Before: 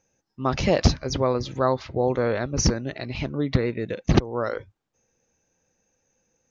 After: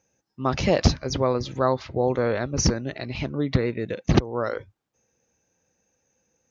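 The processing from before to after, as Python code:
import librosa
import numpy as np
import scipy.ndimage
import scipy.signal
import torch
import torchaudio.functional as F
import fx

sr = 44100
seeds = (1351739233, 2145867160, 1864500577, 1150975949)

y = scipy.signal.sosfilt(scipy.signal.butter(2, 44.0, 'highpass', fs=sr, output='sos'), x)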